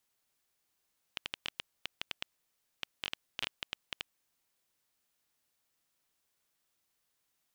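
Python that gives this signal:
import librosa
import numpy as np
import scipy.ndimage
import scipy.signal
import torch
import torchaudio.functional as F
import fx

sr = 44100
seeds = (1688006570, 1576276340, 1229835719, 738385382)

y = fx.geiger_clicks(sr, seeds[0], length_s=3.51, per_s=6.8, level_db=-17.0)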